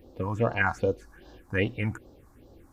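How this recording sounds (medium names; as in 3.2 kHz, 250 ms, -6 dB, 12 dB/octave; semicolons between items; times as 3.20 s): phasing stages 4, 2.5 Hz, lowest notch 450–2200 Hz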